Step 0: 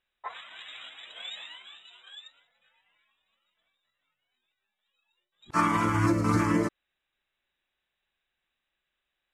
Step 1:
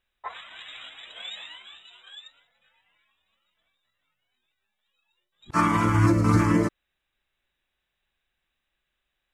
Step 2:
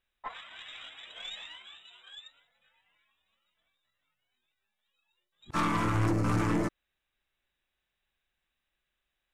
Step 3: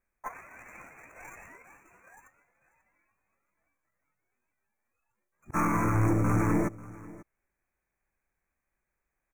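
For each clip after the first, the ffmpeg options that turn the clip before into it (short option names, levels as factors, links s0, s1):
-af "lowshelf=f=140:g=8.5,volume=1.26"
-af "aeval=exprs='(tanh(12.6*val(0)+0.45)-tanh(0.45))/12.6':c=same,volume=0.794"
-filter_complex "[0:a]asplit=2[s0][s1];[s1]acrusher=samples=17:mix=1:aa=0.000001,volume=0.355[s2];[s0][s2]amix=inputs=2:normalize=0,asuperstop=centerf=3800:order=20:qfactor=1.2,aecho=1:1:540:0.1"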